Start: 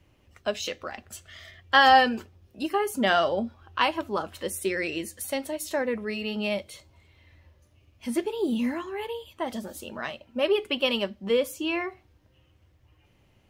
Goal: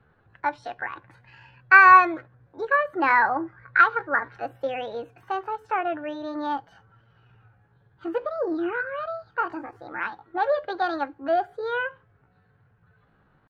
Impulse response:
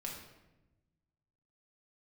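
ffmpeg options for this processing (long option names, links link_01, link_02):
-af "lowpass=frequency=1100:width_type=q:width=4.5,asetrate=62367,aresample=44100,atempo=0.707107,volume=-1dB"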